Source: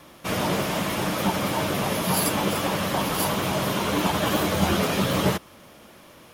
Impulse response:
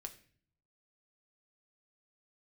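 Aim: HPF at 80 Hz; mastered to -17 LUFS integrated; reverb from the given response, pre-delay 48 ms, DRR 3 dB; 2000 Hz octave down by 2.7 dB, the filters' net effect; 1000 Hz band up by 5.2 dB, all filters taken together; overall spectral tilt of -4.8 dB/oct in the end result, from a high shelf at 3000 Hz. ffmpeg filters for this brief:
-filter_complex "[0:a]highpass=80,equalizer=f=1k:t=o:g=8,equalizer=f=2k:t=o:g=-3.5,highshelf=f=3k:g=-8,asplit=2[a][b];[1:a]atrim=start_sample=2205,adelay=48[c];[b][c]afir=irnorm=-1:irlink=0,volume=1.5dB[d];[a][d]amix=inputs=2:normalize=0,volume=4.5dB"

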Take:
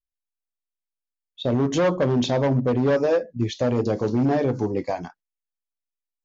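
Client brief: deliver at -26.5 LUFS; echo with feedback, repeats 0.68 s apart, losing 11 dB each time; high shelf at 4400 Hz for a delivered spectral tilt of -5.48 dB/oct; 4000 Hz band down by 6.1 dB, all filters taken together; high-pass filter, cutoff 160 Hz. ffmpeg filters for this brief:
-af "highpass=160,equalizer=f=4k:t=o:g=-5.5,highshelf=f=4.4k:g=-4,aecho=1:1:680|1360|2040:0.282|0.0789|0.0221,volume=-3dB"

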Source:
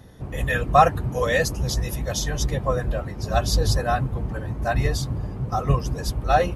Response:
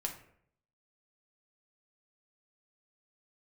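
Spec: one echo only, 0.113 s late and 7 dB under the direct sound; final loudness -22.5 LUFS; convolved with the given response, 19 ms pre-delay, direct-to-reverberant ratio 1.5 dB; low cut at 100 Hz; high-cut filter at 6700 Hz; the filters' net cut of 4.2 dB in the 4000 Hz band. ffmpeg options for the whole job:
-filter_complex "[0:a]highpass=100,lowpass=6.7k,equalizer=f=4k:t=o:g=-4.5,aecho=1:1:113:0.447,asplit=2[a][b];[1:a]atrim=start_sample=2205,adelay=19[c];[b][c]afir=irnorm=-1:irlink=0,volume=-2.5dB[d];[a][d]amix=inputs=2:normalize=0,volume=-0.5dB"

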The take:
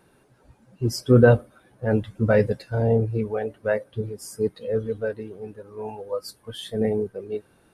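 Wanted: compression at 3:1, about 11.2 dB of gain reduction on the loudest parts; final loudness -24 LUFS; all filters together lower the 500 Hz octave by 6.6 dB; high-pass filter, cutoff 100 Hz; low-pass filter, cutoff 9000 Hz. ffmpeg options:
-af "highpass=100,lowpass=9k,equalizer=f=500:t=o:g=-7.5,acompressor=threshold=-28dB:ratio=3,volume=10.5dB"

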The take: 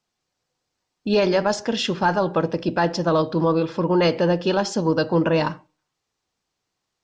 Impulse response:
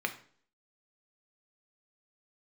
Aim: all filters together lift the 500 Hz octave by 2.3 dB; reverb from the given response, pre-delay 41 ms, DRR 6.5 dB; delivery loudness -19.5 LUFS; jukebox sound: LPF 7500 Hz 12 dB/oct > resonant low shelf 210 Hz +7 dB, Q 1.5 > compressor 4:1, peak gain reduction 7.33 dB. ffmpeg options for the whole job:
-filter_complex "[0:a]equalizer=f=500:t=o:g=4,asplit=2[a][b];[1:a]atrim=start_sample=2205,adelay=41[c];[b][c]afir=irnorm=-1:irlink=0,volume=-12.5dB[d];[a][d]amix=inputs=2:normalize=0,lowpass=7.5k,lowshelf=f=210:t=q:w=1.5:g=7,acompressor=threshold=-17dB:ratio=4,volume=2dB"

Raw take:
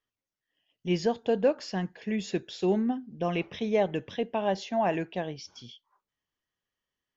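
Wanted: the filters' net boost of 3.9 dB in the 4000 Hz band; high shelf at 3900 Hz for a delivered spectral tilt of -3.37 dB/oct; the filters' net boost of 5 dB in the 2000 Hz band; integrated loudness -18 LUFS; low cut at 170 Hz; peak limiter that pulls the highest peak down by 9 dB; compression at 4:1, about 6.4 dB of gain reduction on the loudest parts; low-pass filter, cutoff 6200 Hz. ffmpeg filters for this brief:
-af "highpass=170,lowpass=6.2k,equalizer=f=2k:t=o:g=6,highshelf=f=3.9k:g=-8,equalizer=f=4k:t=o:g=8.5,acompressor=threshold=-27dB:ratio=4,volume=19dB,alimiter=limit=-7.5dB:level=0:latency=1"

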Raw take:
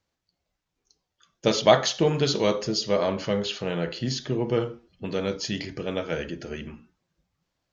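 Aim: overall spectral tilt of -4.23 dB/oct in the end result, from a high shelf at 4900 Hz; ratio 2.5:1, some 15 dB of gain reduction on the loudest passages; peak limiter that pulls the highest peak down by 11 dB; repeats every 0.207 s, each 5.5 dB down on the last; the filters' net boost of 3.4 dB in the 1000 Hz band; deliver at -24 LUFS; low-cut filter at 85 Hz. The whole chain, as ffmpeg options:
-af "highpass=85,equalizer=f=1k:t=o:g=4.5,highshelf=f=4.9k:g=4,acompressor=threshold=-32dB:ratio=2.5,alimiter=level_in=1.5dB:limit=-24dB:level=0:latency=1,volume=-1.5dB,aecho=1:1:207|414|621|828|1035|1242|1449:0.531|0.281|0.149|0.079|0.0419|0.0222|0.0118,volume=11.5dB"

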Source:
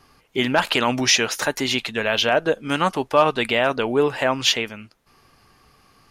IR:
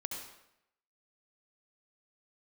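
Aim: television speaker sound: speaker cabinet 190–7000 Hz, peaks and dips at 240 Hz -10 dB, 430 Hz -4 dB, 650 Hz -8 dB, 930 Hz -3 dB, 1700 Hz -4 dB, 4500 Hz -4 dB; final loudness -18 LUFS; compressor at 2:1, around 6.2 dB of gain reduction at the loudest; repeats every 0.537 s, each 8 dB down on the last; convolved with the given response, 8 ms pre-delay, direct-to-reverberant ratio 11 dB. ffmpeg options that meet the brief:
-filter_complex "[0:a]acompressor=threshold=-23dB:ratio=2,aecho=1:1:537|1074|1611|2148|2685:0.398|0.159|0.0637|0.0255|0.0102,asplit=2[a][b];[1:a]atrim=start_sample=2205,adelay=8[c];[b][c]afir=irnorm=-1:irlink=0,volume=-11.5dB[d];[a][d]amix=inputs=2:normalize=0,highpass=f=190:w=0.5412,highpass=f=190:w=1.3066,equalizer=f=240:t=q:w=4:g=-10,equalizer=f=430:t=q:w=4:g=-4,equalizer=f=650:t=q:w=4:g=-8,equalizer=f=930:t=q:w=4:g=-3,equalizer=f=1.7k:t=q:w=4:g=-4,equalizer=f=4.5k:t=q:w=4:g=-4,lowpass=f=7k:w=0.5412,lowpass=f=7k:w=1.3066,volume=8.5dB"

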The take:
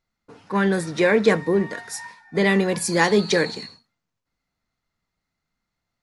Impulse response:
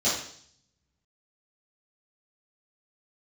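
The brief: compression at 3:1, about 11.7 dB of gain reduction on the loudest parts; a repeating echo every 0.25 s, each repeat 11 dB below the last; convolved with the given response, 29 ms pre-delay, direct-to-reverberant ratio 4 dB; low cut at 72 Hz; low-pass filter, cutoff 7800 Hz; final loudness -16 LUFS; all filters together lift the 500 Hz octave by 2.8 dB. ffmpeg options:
-filter_complex "[0:a]highpass=72,lowpass=7.8k,equalizer=f=500:t=o:g=3.5,acompressor=threshold=-25dB:ratio=3,aecho=1:1:250|500|750:0.282|0.0789|0.0221,asplit=2[a][b];[1:a]atrim=start_sample=2205,adelay=29[c];[b][c]afir=irnorm=-1:irlink=0,volume=-16.5dB[d];[a][d]amix=inputs=2:normalize=0,volume=9.5dB"

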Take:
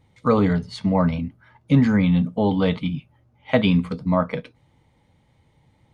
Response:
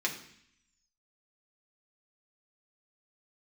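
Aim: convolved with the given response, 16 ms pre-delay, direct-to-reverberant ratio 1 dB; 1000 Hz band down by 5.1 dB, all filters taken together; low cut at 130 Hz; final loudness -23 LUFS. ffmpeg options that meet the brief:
-filter_complex "[0:a]highpass=130,equalizer=f=1k:t=o:g=-6.5,asplit=2[a][b];[1:a]atrim=start_sample=2205,adelay=16[c];[b][c]afir=irnorm=-1:irlink=0,volume=-7.5dB[d];[a][d]amix=inputs=2:normalize=0,volume=-2dB"

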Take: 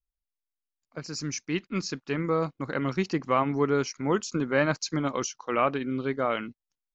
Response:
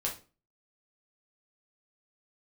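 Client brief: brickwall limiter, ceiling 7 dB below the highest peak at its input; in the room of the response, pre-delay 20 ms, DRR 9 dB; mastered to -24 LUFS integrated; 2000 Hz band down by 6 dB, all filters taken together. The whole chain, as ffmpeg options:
-filter_complex "[0:a]equalizer=f=2k:t=o:g=-8,alimiter=limit=-19dB:level=0:latency=1,asplit=2[a][b];[1:a]atrim=start_sample=2205,adelay=20[c];[b][c]afir=irnorm=-1:irlink=0,volume=-12.5dB[d];[a][d]amix=inputs=2:normalize=0,volume=6.5dB"

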